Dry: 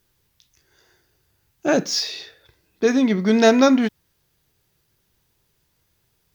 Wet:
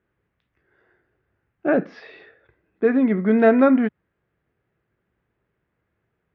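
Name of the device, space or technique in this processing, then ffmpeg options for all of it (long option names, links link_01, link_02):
bass cabinet: -af "highpass=65,equalizer=frequency=86:width_type=q:width=4:gain=-9,equalizer=frequency=140:width_type=q:width=4:gain=-5,equalizer=frequency=930:width_type=q:width=4:gain=-6,lowpass=frequency=2000:width=0.5412,lowpass=frequency=2000:width=1.3066"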